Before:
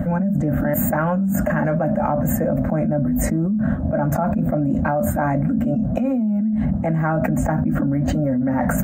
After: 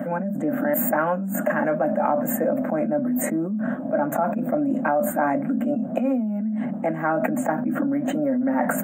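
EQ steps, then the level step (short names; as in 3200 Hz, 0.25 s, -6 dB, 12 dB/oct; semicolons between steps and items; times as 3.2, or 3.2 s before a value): HPF 240 Hz 24 dB/oct; Butterworth band-stop 5000 Hz, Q 1.4; 0.0 dB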